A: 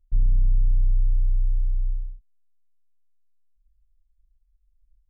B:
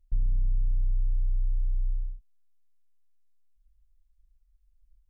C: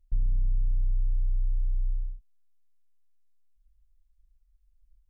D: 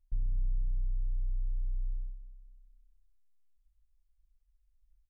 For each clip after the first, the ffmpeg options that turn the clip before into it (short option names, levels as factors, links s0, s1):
-af "acompressor=threshold=0.0631:ratio=3"
-af anull
-af "aecho=1:1:250|500|750|1000:0.237|0.0972|0.0399|0.0163,volume=0.501"